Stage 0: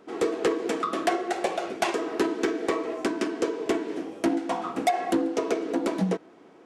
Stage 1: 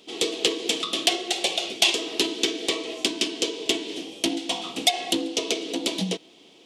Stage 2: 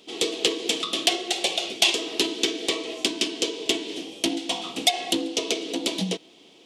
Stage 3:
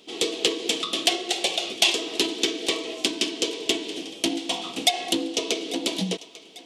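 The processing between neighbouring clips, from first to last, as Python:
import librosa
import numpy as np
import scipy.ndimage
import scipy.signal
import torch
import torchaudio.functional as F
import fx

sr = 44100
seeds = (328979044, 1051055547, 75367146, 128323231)

y1 = fx.high_shelf_res(x, sr, hz=2200.0, db=13.5, q=3.0)
y1 = F.gain(torch.from_numpy(y1), -2.5).numpy()
y2 = y1
y3 = fx.echo_thinned(y2, sr, ms=845, feedback_pct=48, hz=520.0, wet_db=-18.0)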